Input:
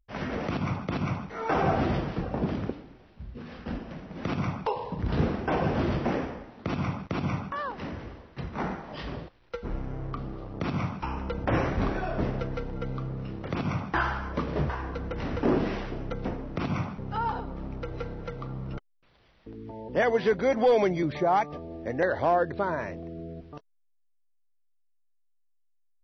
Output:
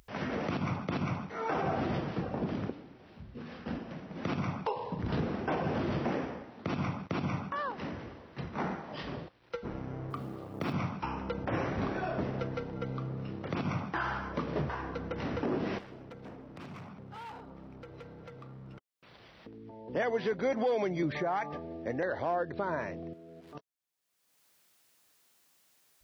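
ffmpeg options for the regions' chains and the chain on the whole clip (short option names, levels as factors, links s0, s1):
-filter_complex "[0:a]asettb=1/sr,asplit=3[s0][s1][s2];[s0]atrim=end=10.104[s3];[s1]atrim=start=10.1:end=10.73,asetpts=PTS-STARTPTS,afade=t=in:d=0.004:c=qsin,afade=t=out:st=0.626:d=0.004:c=qsin,highpass=69,bandreject=f=60:t=h:w=6,bandreject=f=120:t=h:w=6,bandreject=f=180:t=h:w=6,bandreject=f=240:t=h:w=6,acrusher=bits=8:mode=log:mix=0:aa=0.000001[s4];[s2]atrim=start=10.726[s5];[s3][s4]acrossfade=d=0.004:c1=hsin:c2=qsin[s6];[s6][s5]acrossfade=d=0.004:c1=qsin:c2=hsin,asettb=1/sr,asplit=3[s7][s8][s9];[s7]atrim=end=15.784[s10];[s8]atrim=start=15.78:end=19.88,asetpts=PTS-STARTPTS,afade=t=in:d=0.004:c=qsin,afade=t=out:st=4.096:d=0.004:c=qsin,asoftclip=type=hard:threshold=0.0282,acompressor=threshold=0.00708:ratio=4:attack=3.2:release=140:knee=1:detection=peak[s11];[s9]atrim=start=19.876[s12];[s10][s11]acrossfade=d=0.004:c1=hsin:c2=qsin[s13];[s13][s12]acrossfade=d=0.004:c1=qsin:c2=hsin,asettb=1/sr,asplit=3[s14][s15][s16];[s14]atrim=end=21.104[s17];[s15]atrim=start=21.1:end=21.73,asetpts=PTS-STARTPTS,afade=t=in:d=0.004:c=qsin,afade=t=out:st=0.626:d=0.004:c=qsin,equalizer=f=1700:w=1.9:g=7,bandreject=f=213.9:t=h:w=4,bandreject=f=427.8:t=h:w=4,bandreject=f=641.7:t=h:w=4,bandreject=f=855.6:t=h:w=4,bandreject=f=1069.5:t=h:w=4,acompressor=threshold=0.0501:ratio=4:attack=3.2:release=140:knee=1:detection=peak[s18];[s16]atrim=start=21.726[s19];[s17][s18]acrossfade=d=0.004:c1=hsin:c2=qsin[s20];[s20][s19]acrossfade=d=0.004:c1=qsin:c2=hsin,asettb=1/sr,asplit=3[s21][s22][s23];[s21]atrim=end=23.134[s24];[s22]atrim=start=23.13:end=23.55,asetpts=PTS-STARTPTS,afade=t=in:d=0.004:c=qsin,afade=t=out:st=0.416:d=0.004:c=qsin,aeval=exprs='val(0)+0.5*0.00168*sgn(val(0))':c=same,highpass=f=410:p=1,acompressor=threshold=0.00282:ratio=2:attack=3.2:release=140:knee=1:detection=peak[s25];[s23]atrim=start=23.546[s26];[s24][s25]acrossfade=d=0.004:c1=hsin:c2=qsin[s27];[s27][s26]acrossfade=d=0.004:c1=qsin:c2=hsin,highpass=100,alimiter=limit=0.0944:level=0:latency=1:release=171,acompressor=mode=upward:threshold=0.00708:ratio=2.5,volume=0.794"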